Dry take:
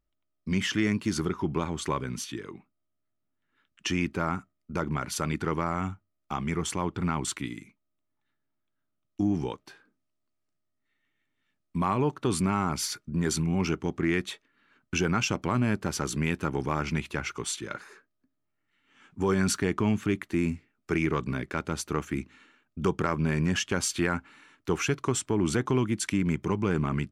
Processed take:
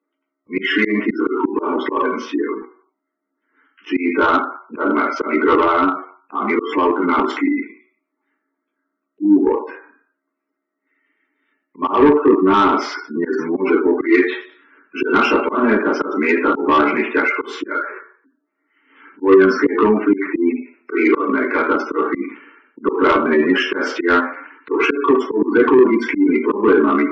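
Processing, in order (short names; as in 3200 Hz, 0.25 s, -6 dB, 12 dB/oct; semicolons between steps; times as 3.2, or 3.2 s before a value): steep high-pass 250 Hz 48 dB/oct; reverb RT60 0.65 s, pre-delay 3 ms, DRR -5.5 dB; in parallel at -7.5 dB: bit-crush 5-bit; on the sum: spectral gate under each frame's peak -20 dB strong; Gaussian blur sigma 1.8 samples; auto swell 0.14 s; soft clip -2 dBFS, distortion -17 dB; bell 810 Hz -8.5 dB 1 oct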